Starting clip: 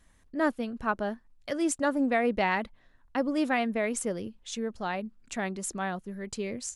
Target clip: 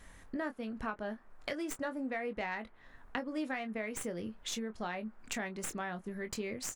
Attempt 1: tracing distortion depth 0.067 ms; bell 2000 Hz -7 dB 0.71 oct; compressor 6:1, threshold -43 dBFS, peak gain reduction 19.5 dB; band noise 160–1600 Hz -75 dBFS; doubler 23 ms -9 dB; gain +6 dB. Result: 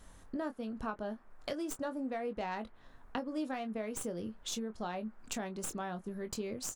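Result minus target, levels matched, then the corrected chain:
2000 Hz band -6.0 dB
tracing distortion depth 0.067 ms; bell 2000 Hz +4.5 dB 0.71 oct; compressor 6:1, threshold -43 dBFS, peak gain reduction 20.5 dB; band noise 160–1600 Hz -75 dBFS; doubler 23 ms -9 dB; gain +6 dB

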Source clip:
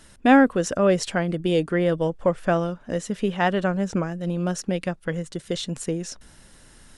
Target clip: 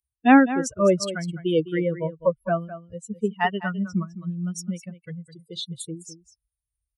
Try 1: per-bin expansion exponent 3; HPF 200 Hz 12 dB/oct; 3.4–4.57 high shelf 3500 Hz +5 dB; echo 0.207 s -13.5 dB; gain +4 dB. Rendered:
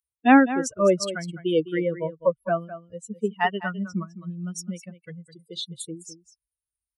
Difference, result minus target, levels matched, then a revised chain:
125 Hz band -3.5 dB
per-bin expansion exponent 3; HPF 85 Hz 12 dB/oct; 3.4–4.57 high shelf 3500 Hz +5 dB; echo 0.207 s -13.5 dB; gain +4 dB

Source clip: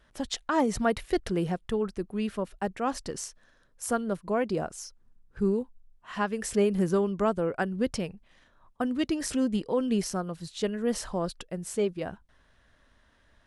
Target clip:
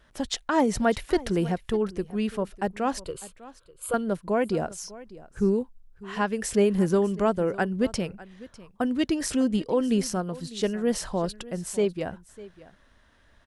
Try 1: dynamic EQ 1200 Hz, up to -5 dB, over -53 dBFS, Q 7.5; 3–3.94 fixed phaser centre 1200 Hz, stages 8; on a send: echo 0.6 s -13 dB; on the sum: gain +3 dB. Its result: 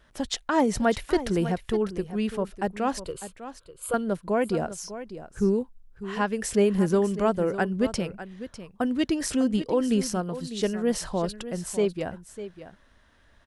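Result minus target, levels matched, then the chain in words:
echo-to-direct +6 dB
dynamic EQ 1200 Hz, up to -5 dB, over -53 dBFS, Q 7.5; 3–3.94 fixed phaser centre 1200 Hz, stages 8; on a send: echo 0.6 s -19 dB; on the sum: gain +3 dB

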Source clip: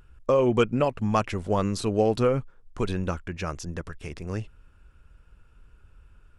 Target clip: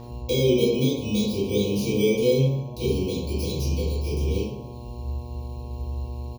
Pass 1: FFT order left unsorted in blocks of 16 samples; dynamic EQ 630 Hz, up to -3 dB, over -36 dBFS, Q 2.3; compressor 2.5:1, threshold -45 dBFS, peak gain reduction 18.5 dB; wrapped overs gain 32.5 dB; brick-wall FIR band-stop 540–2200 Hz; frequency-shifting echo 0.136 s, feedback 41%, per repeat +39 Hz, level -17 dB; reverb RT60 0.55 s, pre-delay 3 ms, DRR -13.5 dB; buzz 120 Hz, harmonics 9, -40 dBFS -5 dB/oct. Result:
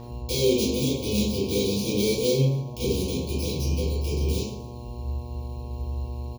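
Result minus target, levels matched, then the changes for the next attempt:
wrapped overs: distortion +30 dB
change: wrapped overs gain 23.5 dB

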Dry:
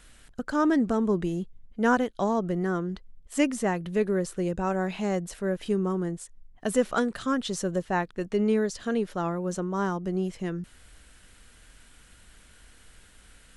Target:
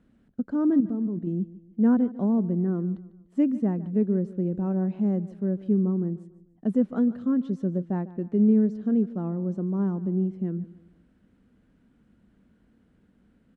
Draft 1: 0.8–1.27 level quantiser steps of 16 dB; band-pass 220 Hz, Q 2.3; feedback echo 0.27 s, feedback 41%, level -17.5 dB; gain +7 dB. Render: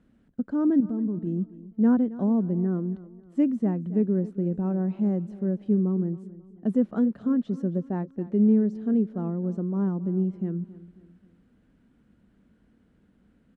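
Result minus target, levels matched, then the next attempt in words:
echo 0.122 s late
0.8–1.27 level quantiser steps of 16 dB; band-pass 220 Hz, Q 2.3; feedback echo 0.148 s, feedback 41%, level -17.5 dB; gain +7 dB

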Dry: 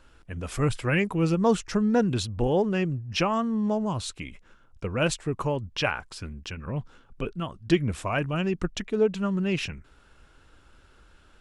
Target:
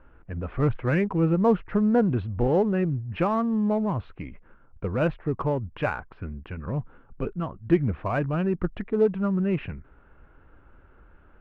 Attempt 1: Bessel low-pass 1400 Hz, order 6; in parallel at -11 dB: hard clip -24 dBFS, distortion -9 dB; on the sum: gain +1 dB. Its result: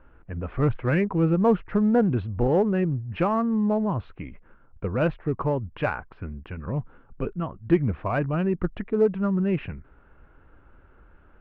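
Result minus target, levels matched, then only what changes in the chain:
hard clip: distortion -5 dB
change: hard clip -31 dBFS, distortion -5 dB

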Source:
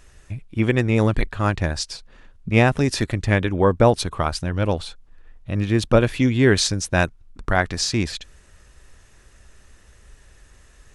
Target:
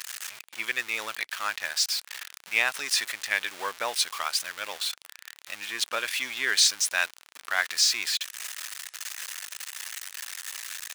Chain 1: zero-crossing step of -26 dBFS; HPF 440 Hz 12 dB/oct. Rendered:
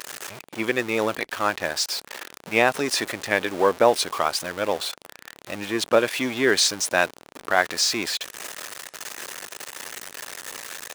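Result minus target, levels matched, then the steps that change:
500 Hz band +14.0 dB
change: HPF 1700 Hz 12 dB/oct

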